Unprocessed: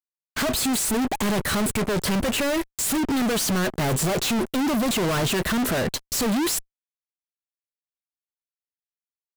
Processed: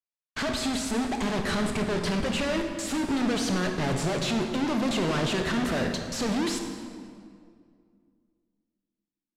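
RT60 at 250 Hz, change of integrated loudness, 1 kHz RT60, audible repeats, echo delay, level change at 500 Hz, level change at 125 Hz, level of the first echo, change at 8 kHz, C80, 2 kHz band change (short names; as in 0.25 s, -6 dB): 2.6 s, -4.5 dB, 2.0 s, none, none, -3.5 dB, -3.5 dB, none, -10.0 dB, 6.5 dB, -3.5 dB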